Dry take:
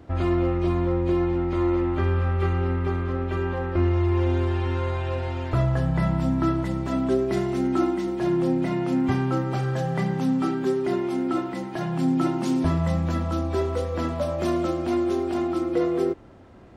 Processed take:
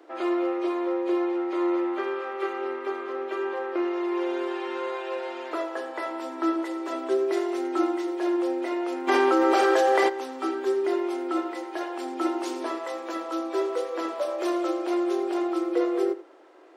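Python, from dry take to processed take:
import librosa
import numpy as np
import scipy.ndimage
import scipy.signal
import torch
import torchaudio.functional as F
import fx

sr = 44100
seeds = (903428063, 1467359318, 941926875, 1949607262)

y = scipy.signal.sosfilt(scipy.signal.cheby1(6, 1.0, 310.0, 'highpass', fs=sr, output='sos'), x)
y = y + 10.0 ** (-16.0 / 20.0) * np.pad(y, (int(84 * sr / 1000.0), 0))[:len(y)]
y = fx.env_flatten(y, sr, amount_pct=100, at=(9.07, 10.08), fade=0.02)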